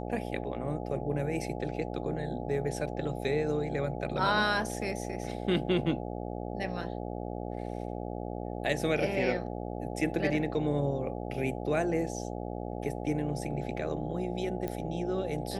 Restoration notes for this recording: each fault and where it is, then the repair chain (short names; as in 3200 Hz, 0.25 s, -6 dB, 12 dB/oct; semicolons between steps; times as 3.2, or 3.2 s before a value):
buzz 60 Hz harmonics 14 -37 dBFS
14.68 pop -21 dBFS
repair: de-click; de-hum 60 Hz, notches 14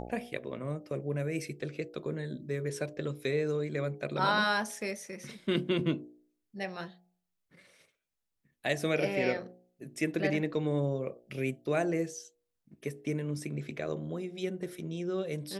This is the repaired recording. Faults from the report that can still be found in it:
none